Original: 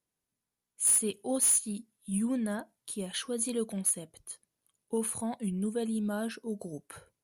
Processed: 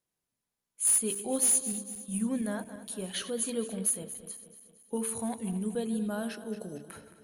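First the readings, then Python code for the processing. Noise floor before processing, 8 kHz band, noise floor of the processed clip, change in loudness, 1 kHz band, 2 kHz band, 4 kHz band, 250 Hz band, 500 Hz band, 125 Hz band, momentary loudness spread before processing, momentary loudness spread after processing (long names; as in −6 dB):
below −85 dBFS, +0.5 dB, below −85 dBFS, 0.0 dB, +0.5 dB, +0.5 dB, +0.5 dB, −0.5 dB, 0.0 dB, −0.5 dB, 17 LU, 16 LU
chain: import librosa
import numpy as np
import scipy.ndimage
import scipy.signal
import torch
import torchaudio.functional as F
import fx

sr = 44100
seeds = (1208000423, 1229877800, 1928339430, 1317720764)

y = fx.reverse_delay_fb(x, sr, ms=115, feedback_pct=70, wet_db=-12.5)
y = fx.hum_notches(y, sr, base_hz=50, count=9)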